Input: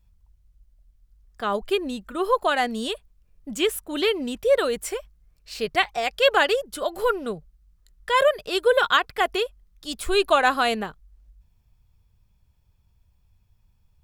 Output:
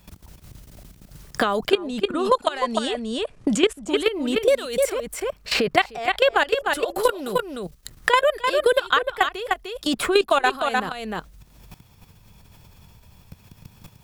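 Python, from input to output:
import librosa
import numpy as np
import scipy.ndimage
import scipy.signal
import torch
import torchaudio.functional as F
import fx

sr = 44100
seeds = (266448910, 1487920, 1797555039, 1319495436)

y = fx.lowpass(x, sr, hz=9300.0, slope=24, at=(1.68, 3.86), fade=0.02)
y = fx.level_steps(y, sr, step_db=19)
y = y + 10.0 ** (-8.5 / 20.0) * np.pad(y, (int(302 * sr / 1000.0), 0))[:len(y)]
y = fx.band_squash(y, sr, depth_pct=100)
y = F.gain(torch.from_numpy(y), 5.0).numpy()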